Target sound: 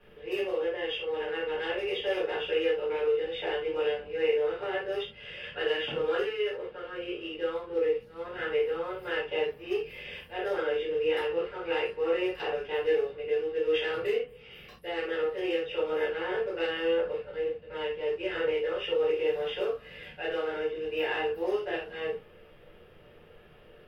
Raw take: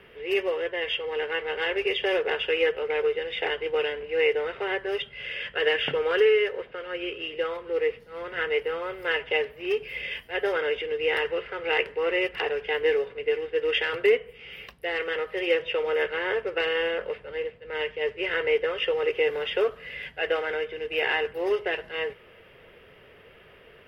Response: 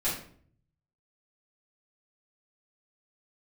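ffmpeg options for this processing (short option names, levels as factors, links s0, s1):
-filter_complex "[0:a]equalizer=f=2100:t=o:w=0.78:g=-8.5,acrossover=split=2100[s0][s1];[s0]alimiter=limit=0.106:level=0:latency=1:release=239[s2];[s2][s1]amix=inputs=2:normalize=0[s3];[1:a]atrim=start_sample=2205,atrim=end_sample=4410[s4];[s3][s4]afir=irnorm=-1:irlink=0,volume=0.355"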